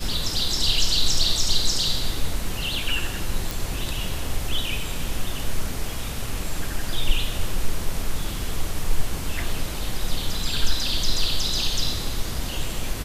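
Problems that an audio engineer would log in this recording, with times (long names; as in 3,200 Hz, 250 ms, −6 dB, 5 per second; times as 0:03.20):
0:03.51: click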